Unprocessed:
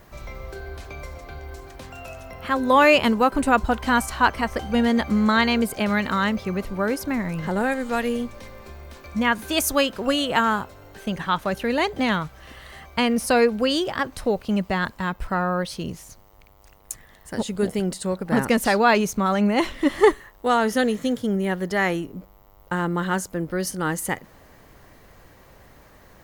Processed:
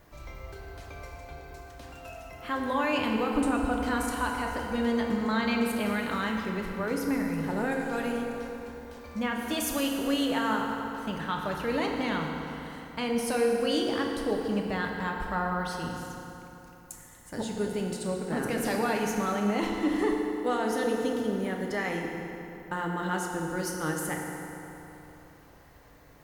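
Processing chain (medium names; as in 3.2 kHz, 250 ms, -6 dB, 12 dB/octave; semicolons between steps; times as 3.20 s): peak limiter -13.5 dBFS, peak gain reduction 9.5 dB; FDN reverb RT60 3.3 s, high-frequency decay 0.65×, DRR 0 dB; trim -8 dB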